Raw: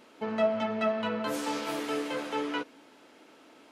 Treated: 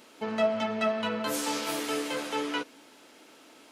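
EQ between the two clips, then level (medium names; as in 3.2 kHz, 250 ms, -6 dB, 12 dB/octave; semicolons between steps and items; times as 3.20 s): treble shelf 3.8 kHz +10.5 dB; 0.0 dB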